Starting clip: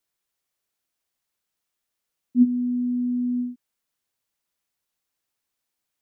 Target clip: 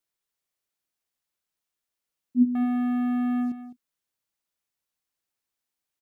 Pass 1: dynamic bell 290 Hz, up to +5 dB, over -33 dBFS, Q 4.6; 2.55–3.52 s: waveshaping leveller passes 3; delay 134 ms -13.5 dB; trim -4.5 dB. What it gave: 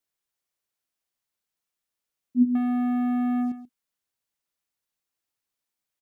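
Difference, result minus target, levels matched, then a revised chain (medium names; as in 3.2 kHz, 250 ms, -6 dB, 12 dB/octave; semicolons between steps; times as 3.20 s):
echo 74 ms early
dynamic bell 290 Hz, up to +5 dB, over -33 dBFS, Q 4.6; 2.55–3.52 s: waveshaping leveller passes 3; delay 208 ms -13.5 dB; trim -4.5 dB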